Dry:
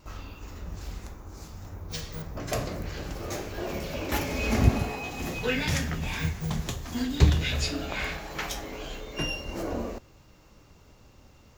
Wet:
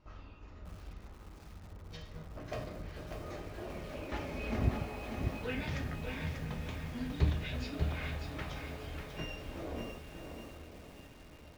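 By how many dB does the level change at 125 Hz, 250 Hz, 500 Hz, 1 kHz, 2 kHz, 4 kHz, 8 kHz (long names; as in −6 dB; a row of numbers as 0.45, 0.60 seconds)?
−8.5, −9.0, −8.5, −9.0, −10.5, −13.0, −18.5 decibels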